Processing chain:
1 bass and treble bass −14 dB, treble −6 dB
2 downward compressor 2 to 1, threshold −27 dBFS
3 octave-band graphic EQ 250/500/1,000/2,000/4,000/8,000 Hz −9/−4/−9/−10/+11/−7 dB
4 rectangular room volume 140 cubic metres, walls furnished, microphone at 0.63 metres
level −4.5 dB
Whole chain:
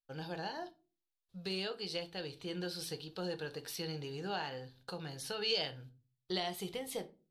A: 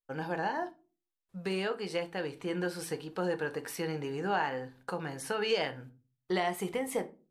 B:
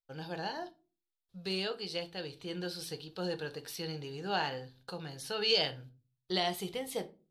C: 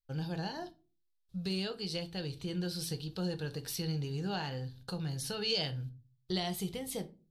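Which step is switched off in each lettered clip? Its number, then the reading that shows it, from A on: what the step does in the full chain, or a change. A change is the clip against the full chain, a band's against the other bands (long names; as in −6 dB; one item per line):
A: 3, change in crest factor −3.0 dB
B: 2, change in momentary loudness spread +3 LU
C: 1, 125 Hz band +9.0 dB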